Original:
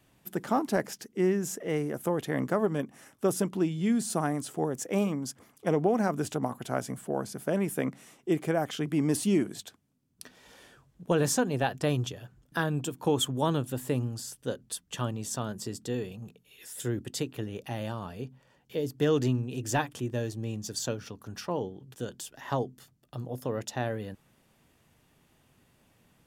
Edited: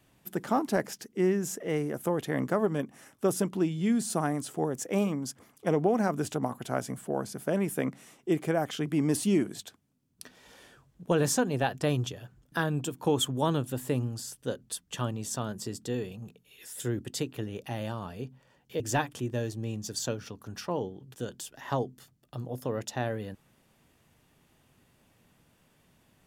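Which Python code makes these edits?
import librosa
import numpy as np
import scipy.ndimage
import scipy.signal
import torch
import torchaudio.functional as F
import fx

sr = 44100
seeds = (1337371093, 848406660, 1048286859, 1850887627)

y = fx.edit(x, sr, fx.cut(start_s=18.8, length_s=0.8), tone=tone)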